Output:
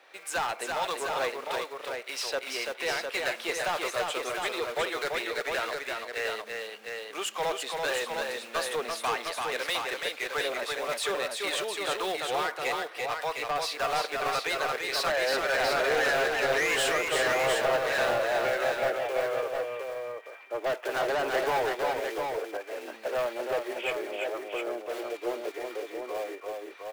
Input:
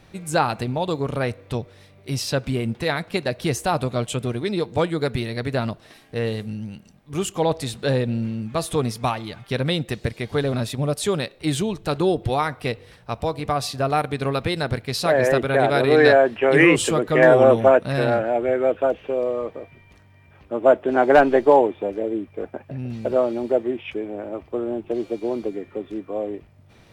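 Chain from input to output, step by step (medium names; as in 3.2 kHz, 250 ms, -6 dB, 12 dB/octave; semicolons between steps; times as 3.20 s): block-companded coder 5-bit; high-pass 430 Hz 24 dB/octave; peaking EQ 1.8 kHz +11.5 dB 2.7 oct; peak limiter -4 dBFS, peak gain reduction 9 dB; harmonic tremolo 1.7 Hz, depth 50%, crossover 730 Hz; saturation -19.5 dBFS, distortion -8 dB; on a send: multi-tap echo 337/707 ms -4/-5 dB; on the sum: trim -5.5 dB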